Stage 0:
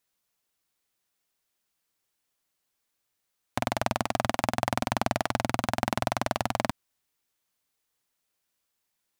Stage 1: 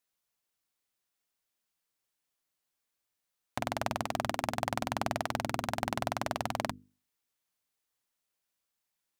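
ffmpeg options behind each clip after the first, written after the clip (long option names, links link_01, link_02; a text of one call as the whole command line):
ffmpeg -i in.wav -af "bandreject=frequency=50:width_type=h:width=6,bandreject=frequency=100:width_type=h:width=6,bandreject=frequency=150:width_type=h:width=6,bandreject=frequency=200:width_type=h:width=6,bandreject=frequency=250:width_type=h:width=6,bandreject=frequency=300:width_type=h:width=6,bandreject=frequency=350:width_type=h:width=6,bandreject=frequency=400:width_type=h:width=6,bandreject=frequency=450:width_type=h:width=6,volume=-5dB" out.wav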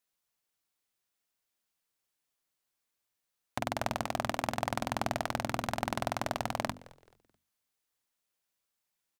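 ffmpeg -i in.wav -filter_complex "[0:a]asplit=4[link_01][link_02][link_03][link_04];[link_02]adelay=216,afreqshift=-110,volume=-21dB[link_05];[link_03]adelay=432,afreqshift=-220,volume=-30.1dB[link_06];[link_04]adelay=648,afreqshift=-330,volume=-39.2dB[link_07];[link_01][link_05][link_06][link_07]amix=inputs=4:normalize=0" out.wav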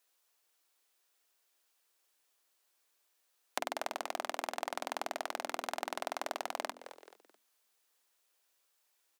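ffmpeg -i in.wav -af "acompressor=threshold=-39dB:ratio=10,highpass=frequency=330:width=0.5412,highpass=frequency=330:width=1.3066,bandreject=frequency=2100:width=29,volume=8dB" out.wav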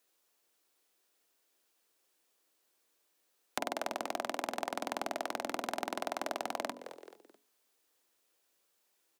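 ffmpeg -i in.wav -filter_complex "[0:a]bandreject=frequency=140.6:width_type=h:width=4,bandreject=frequency=281.2:width_type=h:width=4,bandreject=frequency=421.8:width_type=h:width=4,bandreject=frequency=562.4:width_type=h:width=4,bandreject=frequency=703:width_type=h:width=4,bandreject=frequency=843.6:width_type=h:width=4,bandreject=frequency=984.2:width_type=h:width=4,acrossover=split=460|2400[link_01][link_02][link_03];[link_01]aeval=exprs='0.0211*sin(PI/2*2*val(0)/0.0211)':channel_layout=same[link_04];[link_04][link_02][link_03]amix=inputs=3:normalize=0" out.wav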